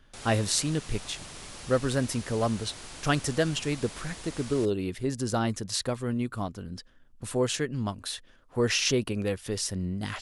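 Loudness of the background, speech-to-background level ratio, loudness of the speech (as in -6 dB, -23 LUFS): -42.5 LUFS, 13.0 dB, -29.5 LUFS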